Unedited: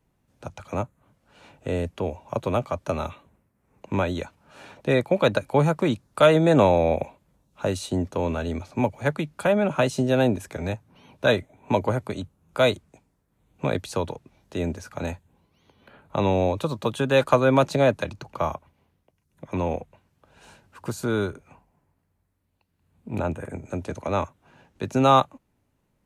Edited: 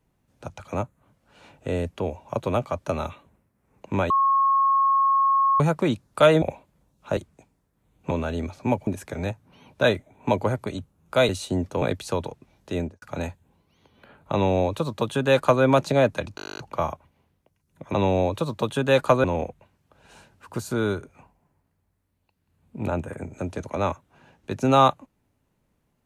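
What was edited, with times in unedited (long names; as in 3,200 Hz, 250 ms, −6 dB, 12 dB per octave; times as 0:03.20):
0:04.10–0:05.60: beep over 1,090 Hz −16.5 dBFS
0:06.42–0:06.95: remove
0:07.70–0:08.23: swap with 0:12.72–0:13.66
0:08.99–0:10.30: remove
0:14.61–0:14.86: fade out and dull
0:16.17–0:17.47: duplicate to 0:19.56
0:18.20: stutter 0.02 s, 12 plays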